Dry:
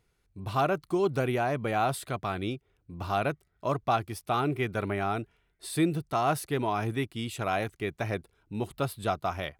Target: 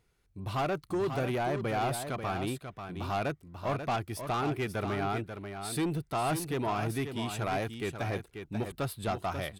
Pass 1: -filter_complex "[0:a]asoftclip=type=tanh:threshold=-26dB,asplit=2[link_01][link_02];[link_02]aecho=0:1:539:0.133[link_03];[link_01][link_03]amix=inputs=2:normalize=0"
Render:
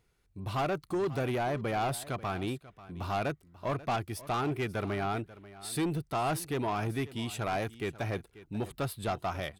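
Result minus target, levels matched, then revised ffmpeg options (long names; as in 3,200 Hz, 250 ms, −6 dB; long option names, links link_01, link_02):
echo-to-direct −9.5 dB
-filter_complex "[0:a]asoftclip=type=tanh:threshold=-26dB,asplit=2[link_01][link_02];[link_02]aecho=0:1:539:0.398[link_03];[link_01][link_03]amix=inputs=2:normalize=0"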